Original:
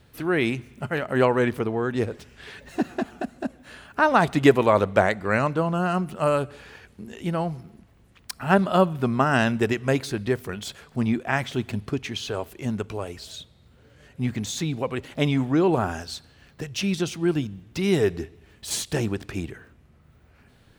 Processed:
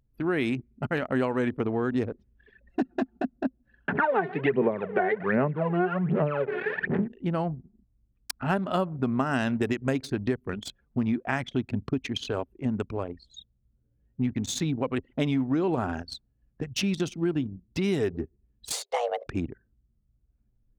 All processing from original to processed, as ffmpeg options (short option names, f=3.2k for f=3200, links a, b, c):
-filter_complex "[0:a]asettb=1/sr,asplit=3[a][b][c];[a]atrim=end=3.884[d];[b]atrim=start=3.88:end=7.08,asetpts=PTS-STARTPTS,afade=t=in:d=0.004:c=qsin,afade=t=out:st=3.196:d=0.004:c=qsin,aeval=exprs='val(0)+0.5*0.0316*sgn(val(0))':c=same,aphaser=in_gain=1:out_gain=1:delay=2.8:decay=0.78:speed=1.3:type=sinusoidal,highpass=f=150:w=0.5412,highpass=f=150:w=1.3066,equalizer=f=170:t=q:w=4:g=8,equalizer=f=280:t=q:w=4:g=-7,equalizer=f=410:t=q:w=4:g=9,equalizer=f=1.2k:t=q:w=4:g=-5,equalizer=f=1.8k:t=q:w=4:g=4,lowpass=f=2.4k:w=0.5412,lowpass=f=2.4k:w=1.3066[e];[c]atrim=start=7.076[f];[d][e]acrossfade=d=0.004:c1=hsin:c2=qsin[g];[g][f]acrossfade=d=0.004:c1=qsin:c2=hsin,asettb=1/sr,asplit=3[h][i][j];[h]atrim=end=18.724[k];[i]atrim=start=18.72:end=19.27,asetpts=PTS-STARTPTS,afade=t=in:d=0.004:c=qsin,afade=t=out:st=0.546:d=0.004:c=qsin,highshelf=f=5.4k:g=-8,bandreject=f=64.62:t=h:w=4,bandreject=f=129.24:t=h:w=4,bandreject=f=193.86:t=h:w=4,bandreject=f=258.48:t=h:w=4,bandreject=f=323.1:t=h:w=4,afreqshift=360[l];[j]atrim=start=19.266[m];[k][l]acrossfade=d=0.004:c1=hsin:c2=qsin[n];[n][m]acrossfade=d=0.004:c1=qsin:c2=hsin,anlmdn=15.8,equalizer=f=260:w=4.5:g=6.5,acompressor=threshold=-23dB:ratio=5"